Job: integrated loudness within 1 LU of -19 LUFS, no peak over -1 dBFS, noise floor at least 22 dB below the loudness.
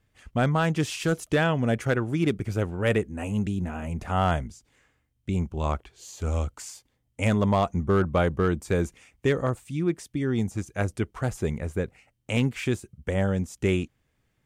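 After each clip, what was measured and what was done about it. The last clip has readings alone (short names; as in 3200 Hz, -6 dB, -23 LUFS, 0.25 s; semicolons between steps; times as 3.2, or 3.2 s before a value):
clipped 0.3%; flat tops at -14.5 dBFS; loudness -27.0 LUFS; peak -14.5 dBFS; loudness target -19.0 LUFS
-> clip repair -14.5 dBFS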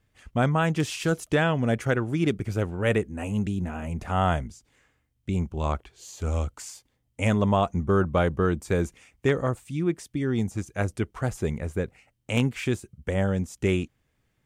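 clipped 0.0%; loudness -27.0 LUFS; peak -8.0 dBFS; loudness target -19.0 LUFS
-> gain +8 dB; limiter -1 dBFS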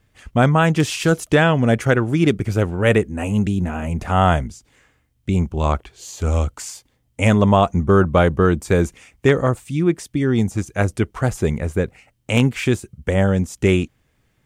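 loudness -19.0 LUFS; peak -1.0 dBFS; noise floor -65 dBFS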